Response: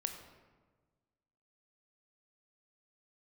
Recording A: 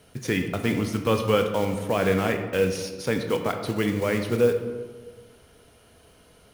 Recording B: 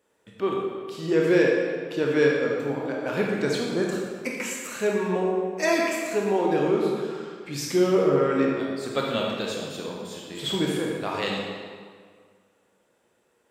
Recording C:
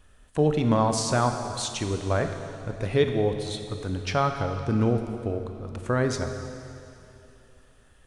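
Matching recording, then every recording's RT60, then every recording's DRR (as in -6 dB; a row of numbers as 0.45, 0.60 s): A; 1.4, 1.9, 2.9 s; 5.5, -2.5, 6.0 dB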